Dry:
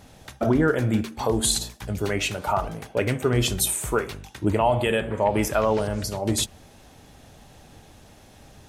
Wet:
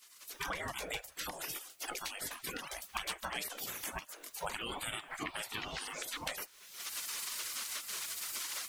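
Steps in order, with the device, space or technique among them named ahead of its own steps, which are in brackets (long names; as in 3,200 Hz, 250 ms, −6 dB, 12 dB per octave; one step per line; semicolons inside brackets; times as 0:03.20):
reverb reduction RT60 0.59 s
gate on every frequency bin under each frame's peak −25 dB weak
cheap recorder with automatic gain (white noise bed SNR 32 dB; camcorder AGC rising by 38 dB per second)
level +1 dB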